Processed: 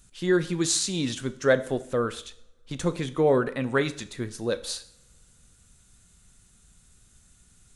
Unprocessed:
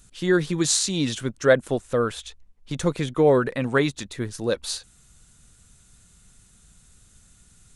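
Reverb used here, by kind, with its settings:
coupled-rooms reverb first 0.55 s, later 2.4 s, from −27 dB, DRR 11.5 dB
level −3.5 dB

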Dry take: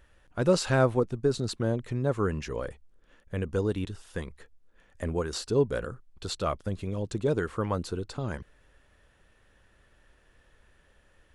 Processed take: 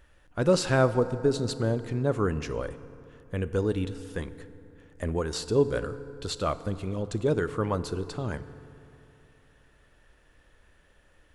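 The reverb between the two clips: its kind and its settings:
feedback delay network reverb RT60 2.9 s, high-frequency decay 0.5×, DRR 12.5 dB
level +1 dB

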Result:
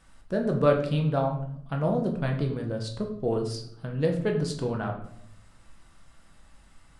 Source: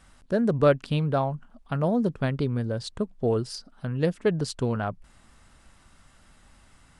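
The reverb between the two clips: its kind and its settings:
rectangular room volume 130 cubic metres, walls mixed, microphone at 0.69 metres
level −4 dB

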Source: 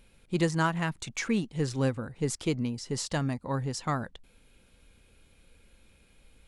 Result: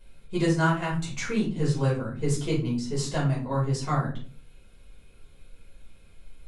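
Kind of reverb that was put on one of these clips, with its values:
rectangular room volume 260 cubic metres, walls furnished, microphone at 5.2 metres
level −7 dB

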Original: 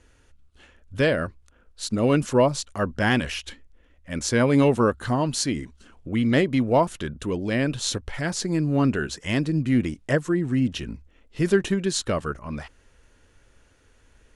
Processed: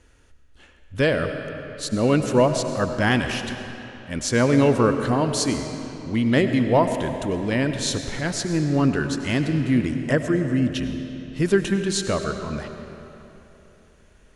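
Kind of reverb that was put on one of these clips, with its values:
comb and all-pass reverb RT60 3.2 s, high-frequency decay 0.75×, pre-delay 55 ms, DRR 7 dB
level +1 dB

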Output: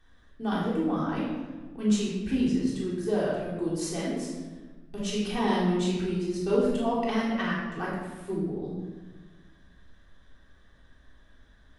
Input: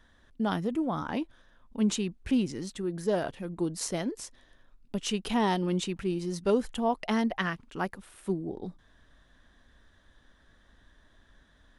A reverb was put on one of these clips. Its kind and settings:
rectangular room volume 860 cubic metres, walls mixed, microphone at 3.6 metres
level −7 dB

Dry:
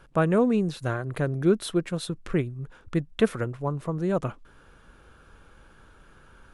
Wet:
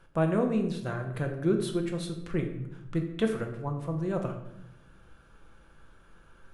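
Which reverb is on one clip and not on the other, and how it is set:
rectangular room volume 250 cubic metres, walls mixed, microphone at 0.78 metres
level −6.5 dB

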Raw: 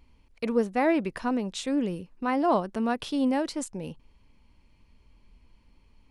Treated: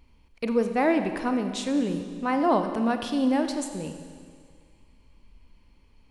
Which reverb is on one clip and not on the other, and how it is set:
four-comb reverb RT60 2 s, combs from 31 ms, DRR 7 dB
level +1 dB

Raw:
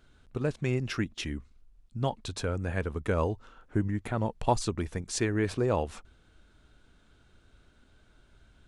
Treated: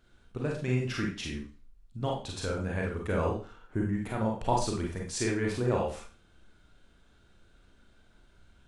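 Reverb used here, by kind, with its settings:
four-comb reverb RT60 0.37 s, combs from 32 ms, DRR −1.5 dB
level −4 dB

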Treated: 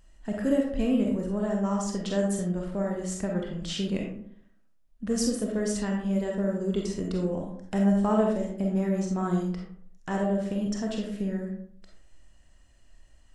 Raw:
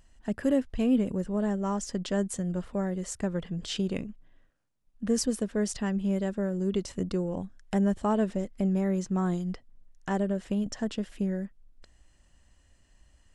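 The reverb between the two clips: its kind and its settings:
comb and all-pass reverb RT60 0.64 s, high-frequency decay 0.5×, pre-delay 5 ms, DRR −0.5 dB
level −1.5 dB

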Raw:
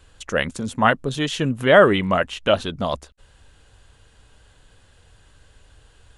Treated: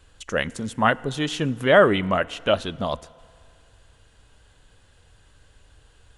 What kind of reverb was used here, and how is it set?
feedback delay network reverb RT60 2.3 s, low-frequency decay 0.75×, high-frequency decay 0.85×, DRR 20 dB
level −2.5 dB

